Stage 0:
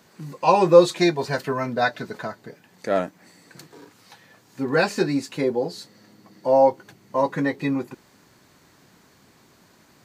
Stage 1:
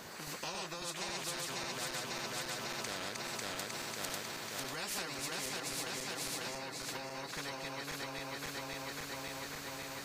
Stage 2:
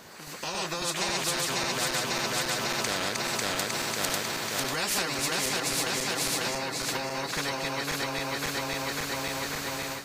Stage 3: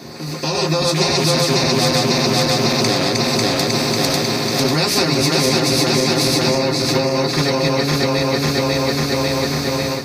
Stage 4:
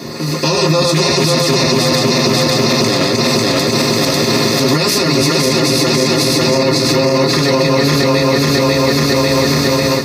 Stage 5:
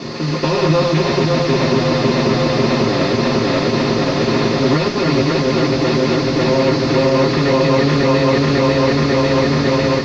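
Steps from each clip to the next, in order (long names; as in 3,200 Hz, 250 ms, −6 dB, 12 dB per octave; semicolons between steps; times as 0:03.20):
feedback delay that plays each chunk backwards 273 ms, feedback 73%, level −0.5 dB; downward compressor 4 to 1, threshold −25 dBFS, peak gain reduction 15.5 dB; every bin compressed towards the loudest bin 4 to 1; level −7.5 dB
automatic gain control gain up to 11 dB
convolution reverb, pre-delay 3 ms, DRR 0 dB; level +4.5 dB
brickwall limiter −12 dBFS, peak gain reduction 9.5 dB; notch comb filter 770 Hz; level +9 dB
variable-slope delta modulation 32 kbit/s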